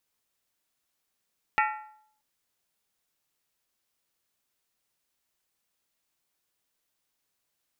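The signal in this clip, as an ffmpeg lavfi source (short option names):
-f lavfi -i "aevalsrc='0.0841*pow(10,-3*t/0.66)*sin(2*PI*857*t)+0.0668*pow(10,-3*t/0.523)*sin(2*PI*1366.1*t)+0.0531*pow(10,-3*t/0.452)*sin(2*PI*1830.6*t)+0.0422*pow(10,-3*t/0.436)*sin(2*PI*1967.7*t)+0.0335*pow(10,-3*t/0.405)*sin(2*PI*2273.6*t)+0.0266*pow(10,-3*t/0.386)*sin(2*PI*2500.7*t)+0.0211*pow(10,-3*t/0.372)*sin(2*PI*2704.7*t)':d=0.63:s=44100"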